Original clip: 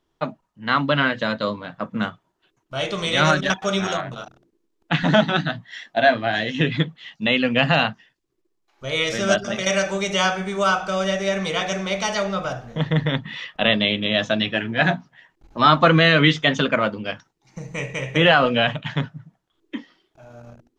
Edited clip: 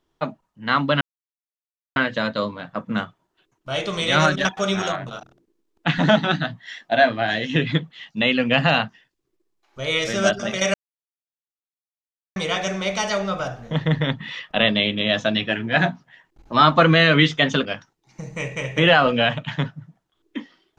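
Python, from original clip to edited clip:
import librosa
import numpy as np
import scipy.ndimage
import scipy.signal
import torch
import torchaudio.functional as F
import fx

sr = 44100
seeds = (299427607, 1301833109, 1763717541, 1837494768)

y = fx.edit(x, sr, fx.insert_silence(at_s=1.01, length_s=0.95),
    fx.silence(start_s=9.79, length_s=1.62),
    fx.cut(start_s=16.7, length_s=0.33), tone=tone)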